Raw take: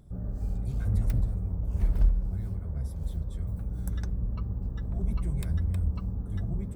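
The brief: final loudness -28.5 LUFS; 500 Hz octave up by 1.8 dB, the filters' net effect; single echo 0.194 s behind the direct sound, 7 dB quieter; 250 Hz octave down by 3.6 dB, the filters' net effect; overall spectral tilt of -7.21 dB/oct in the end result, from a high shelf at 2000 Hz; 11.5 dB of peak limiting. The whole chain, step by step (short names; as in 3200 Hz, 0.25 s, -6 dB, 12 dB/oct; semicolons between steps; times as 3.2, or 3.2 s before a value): bell 250 Hz -7 dB; bell 500 Hz +4 dB; high shelf 2000 Hz +7.5 dB; limiter -24 dBFS; echo 0.194 s -7 dB; gain +5.5 dB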